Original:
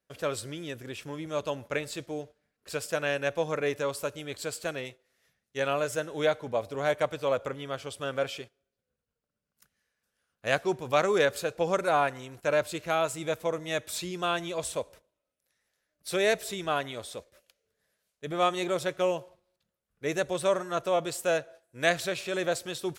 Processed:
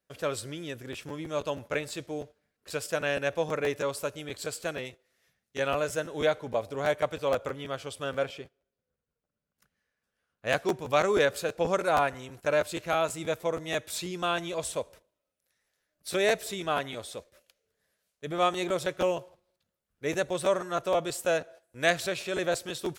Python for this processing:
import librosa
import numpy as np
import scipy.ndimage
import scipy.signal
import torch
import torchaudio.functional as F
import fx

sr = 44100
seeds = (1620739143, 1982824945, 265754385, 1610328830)

y = fx.high_shelf(x, sr, hz=fx.line((8.25, 2700.0), (10.48, 4600.0)), db=-9.5, at=(8.25, 10.48), fade=0.02)
y = fx.quant_float(y, sr, bits=6, at=(19.01, 20.15))
y = fx.buffer_crackle(y, sr, first_s=0.92, period_s=0.16, block=512, kind='repeat')